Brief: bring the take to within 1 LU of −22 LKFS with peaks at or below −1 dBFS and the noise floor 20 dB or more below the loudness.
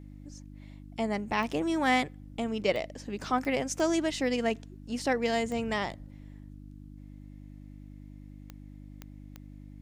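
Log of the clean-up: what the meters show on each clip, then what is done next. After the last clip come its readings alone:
number of clicks 8; mains hum 50 Hz; hum harmonics up to 300 Hz; level of the hum −44 dBFS; integrated loudness −30.5 LKFS; sample peak −12.0 dBFS; target loudness −22.0 LKFS
→ click removal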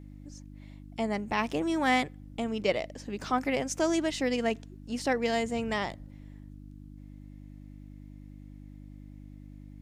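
number of clicks 0; mains hum 50 Hz; hum harmonics up to 300 Hz; level of the hum −44 dBFS
→ hum removal 50 Hz, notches 6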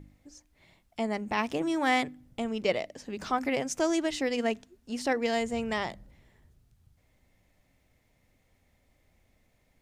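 mains hum none found; integrated loudness −30.5 LKFS; sample peak −12.5 dBFS; target loudness −22.0 LKFS
→ level +8.5 dB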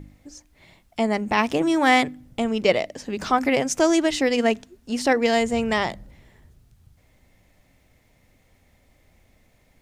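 integrated loudness −22.0 LKFS; sample peak −4.0 dBFS; background noise floor −61 dBFS

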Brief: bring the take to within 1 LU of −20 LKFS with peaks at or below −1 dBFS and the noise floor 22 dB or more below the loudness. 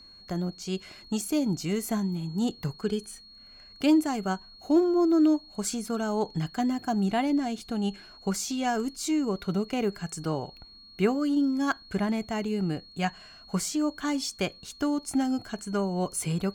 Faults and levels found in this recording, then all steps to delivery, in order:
interfering tone 4,300 Hz; level of the tone −49 dBFS; integrated loudness −28.5 LKFS; sample peak −11.5 dBFS; target loudness −20.0 LKFS
→ notch filter 4,300 Hz, Q 30
level +8.5 dB

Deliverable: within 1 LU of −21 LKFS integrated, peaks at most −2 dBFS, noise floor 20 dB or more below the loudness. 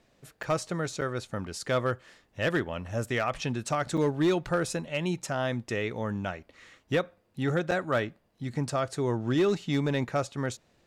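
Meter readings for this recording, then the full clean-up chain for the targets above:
share of clipped samples 0.5%; peaks flattened at −19.0 dBFS; number of dropouts 4; longest dropout 6.4 ms; integrated loudness −30.0 LKFS; sample peak −19.0 dBFS; target loudness −21.0 LKFS
→ clipped peaks rebuilt −19 dBFS
repair the gap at 0:00.43/0:01.01/0:03.97/0:07.71, 6.4 ms
level +9 dB

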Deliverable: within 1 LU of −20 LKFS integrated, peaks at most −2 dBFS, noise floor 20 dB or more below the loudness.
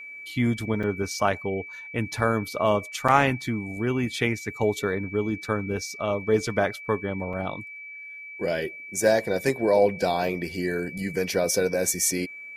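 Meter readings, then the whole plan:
number of dropouts 3; longest dropout 5.3 ms; interfering tone 2,300 Hz; level of the tone −38 dBFS; integrated loudness −26.0 LKFS; sample peak −4.5 dBFS; target loudness −20.0 LKFS
→ repair the gap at 0:00.83/0:03.08/0:07.33, 5.3 ms
notch filter 2,300 Hz, Q 30
level +6 dB
brickwall limiter −2 dBFS

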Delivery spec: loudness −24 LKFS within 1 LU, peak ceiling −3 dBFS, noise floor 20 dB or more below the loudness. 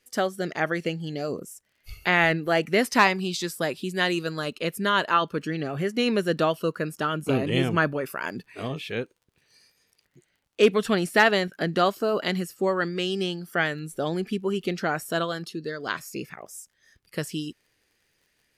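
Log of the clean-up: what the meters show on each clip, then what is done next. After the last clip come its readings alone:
crackle rate 37 per second; integrated loudness −25.5 LKFS; sample peak −6.5 dBFS; target loudness −24.0 LKFS
→ click removal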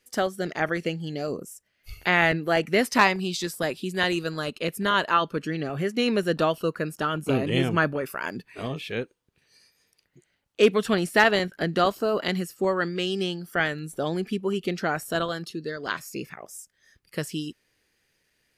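crackle rate 0 per second; integrated loudness −25.5 LKFS; sample peak −6.5 dBFS; target loudness −24.0 LKFS
→ level +1.5 dB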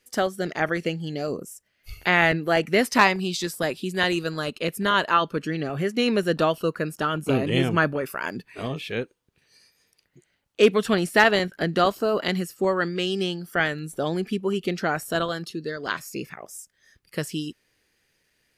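integrated loudness −24.0 LKFS; sample peak −5.0 dBFS; background noise floor −71 dBFS

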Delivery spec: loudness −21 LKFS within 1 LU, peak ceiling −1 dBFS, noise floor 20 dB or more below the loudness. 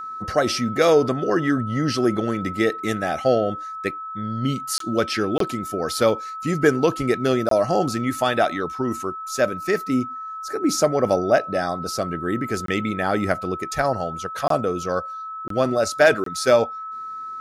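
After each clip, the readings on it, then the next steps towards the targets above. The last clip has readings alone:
number of dropouts 7; longest dropout 23 ms; interfering tone 1,300 Hz; level of the tone −30 dBFS; integrated loudness −22.5 LKFS; sample peak −4.5 dBFS; target loudness −21.0 LKFS
→ repair the gap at 0:04.78/0:05.38/0:07.49/0:12.66/0:14.48/0:15.48/0:16.24, 23 ms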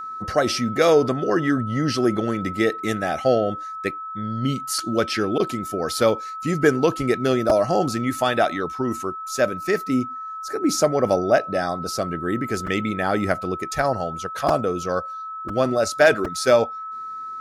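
number of dropouts 0; interfering tone 1,300 Hz; level of the tone −30 dBFS
→ notch filter 1,300 Hz, Q 30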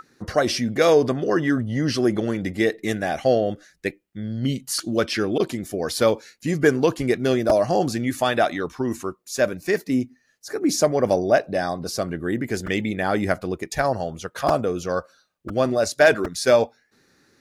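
interfering tone none found; integrated loudness −22.5 LKFS; sample peak −4.5 dBFS; target loudness −21.0 LKFS
→ level +1.5 dB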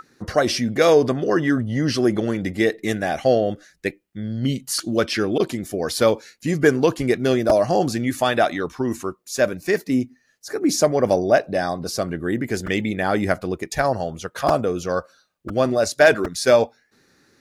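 integrated loudness −21.0 LKFS; sample peak −3.0 dBFS; background noise floor −63 dBFS

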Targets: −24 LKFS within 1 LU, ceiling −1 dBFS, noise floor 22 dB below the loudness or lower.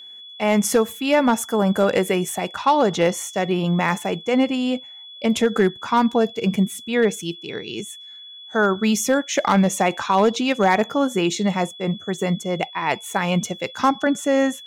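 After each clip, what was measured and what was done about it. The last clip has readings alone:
share of clipped samples 0.6%; peaks flattened at −9.0 dBFS; interfering tone 3,400 Hz; level of the tone −38 dBFS; integrated loudness −21.0 LKFS; sample peak −9.0 dBFS; target loudness −24.0 LKFS
→ clipped peaks rebuilt −9 dBFS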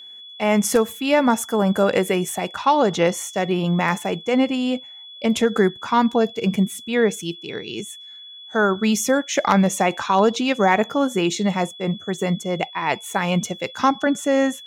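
share of clipped samples 0.0%; interfering tone 3,400 Hz; level of the tone −38 dBFS
→ notch filter 3,400 Hz, Q 30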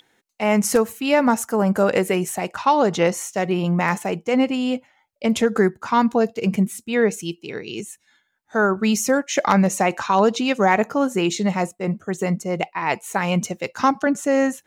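interfering tone none found; integrated loudness −20.5 LKFS; sample peak −2.5 dBFS; target loudness −24.0 LKFS
→ level −3.5 dB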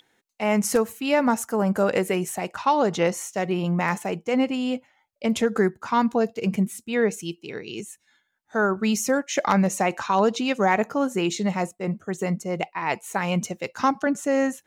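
integrated loudness −24.5 LKFS; sample peak −6.0 dBFS; background noise floor −71 dBFS

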